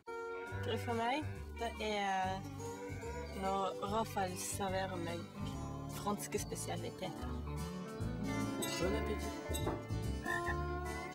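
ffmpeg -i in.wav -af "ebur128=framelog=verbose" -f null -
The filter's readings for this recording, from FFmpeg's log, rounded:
Integrated loudness:
  I:         -40.0 LUFS
  Threshold: -50.0 LUFS
Loudness range:
  LRA:         2.5 LU
  Threshold: -60.1 LUFS
  LRA low:   -41.7 LUFS
  LRA high:  -39.2 LUFS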